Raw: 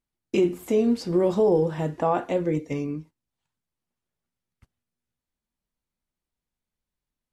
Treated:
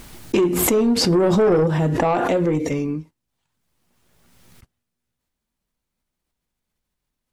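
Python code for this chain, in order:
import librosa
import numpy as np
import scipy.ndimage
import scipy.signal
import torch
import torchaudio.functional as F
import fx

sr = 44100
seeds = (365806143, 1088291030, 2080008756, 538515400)

y = fx.low_shelf(x, sr, hz=360.0, db=4.5, at=(1.17, 2.04))
y = 10.0 ** (-18.0 / 20.0) * np.tanh(y / 10.0 ** (-18.0 / 20.0))
y = fx.pre_swell(y, sr, db_per_s=25.0)
y = y * librosa.db_to_amplitude(6.0)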